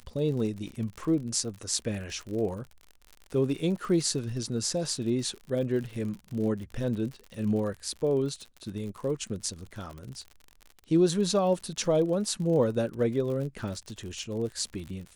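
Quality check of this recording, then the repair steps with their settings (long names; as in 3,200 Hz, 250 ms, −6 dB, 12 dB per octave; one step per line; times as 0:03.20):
surface crackle 59 per second −36 dBFS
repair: click removal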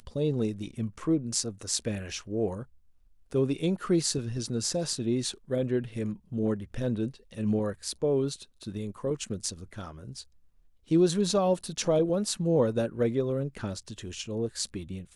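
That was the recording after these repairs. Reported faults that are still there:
none of them is left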